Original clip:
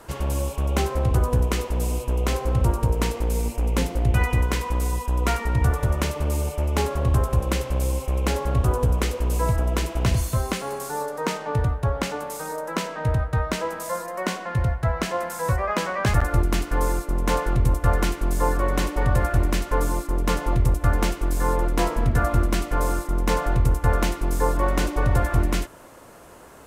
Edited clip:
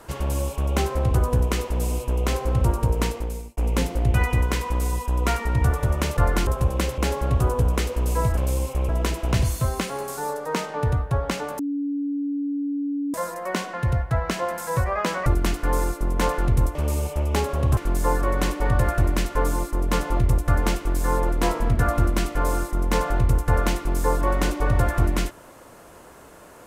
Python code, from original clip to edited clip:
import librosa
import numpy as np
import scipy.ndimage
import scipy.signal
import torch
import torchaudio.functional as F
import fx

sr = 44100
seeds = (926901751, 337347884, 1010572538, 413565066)

y = fx.edit(x, sr, fx.fade_out_span(start_s=3.04, length_s=0.53),
    fx.swap(start_s=6.17, length_s=1.02, other_s=17.83, other_length_s=0.3),
    fx.move(start_s=7.7, length_s=0.52, to_s=9.61),
    fx.bleep(start_s=12.31, length_s=1.55, hz=285.0, db=-23.0),
    fx.cut(start_s=15.98, length_s=0.36), tone=tone)